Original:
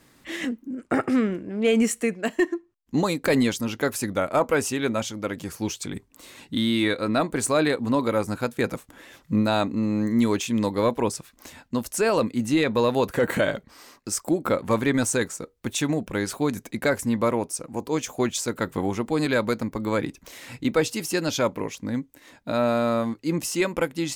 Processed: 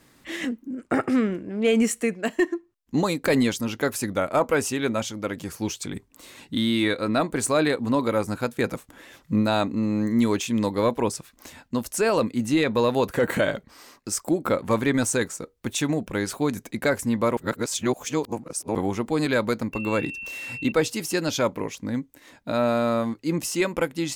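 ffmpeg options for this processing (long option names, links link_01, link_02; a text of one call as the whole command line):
ffmpeg -i in.wav -filter_complex "[0:a]asettb=1/sr,asplit=3[link_01][link_02][link_03];[link_01]atrim=end=19.734[link_04];[link_02]atrim=start=19.73:end=20.72,asetpts=PTS-STARTPTS,afade=type=in:duration=0.004:curve=qsin,afade=type=out:start_time=0.986:duration=0.004:curve=qsin,aeval=exprs='val(0)+0.0224*sin(2*PI*2700*n/s)':channel_layout=same[link_05];[link_03]atrim=start=20.716[link_06];[link_04][link_05]acrossfade=duration=0.004:curve1=hsin:curve2=qsin[link_07];[link_07][link_06]acrossfade=duration=0.004:curve1=qsin:curve2=hsin,asplit=3[link_08][link_09][link_10];[link_08]atrim=end=17.372[link_11];[link_09]atrim=start=17.368:end=18.752,asetpts=PTS-STARTPTS,areverse[link_12];[link_10]atrim=start=18.748[link_13];[link_11][link_12]acrossfade=duration=0.004:curve1=hsin:curve2=hsin[link_14];[link_14][link_13]acrossfade=duration=0.004:curve1=hsin:curve2=hsin" out.wav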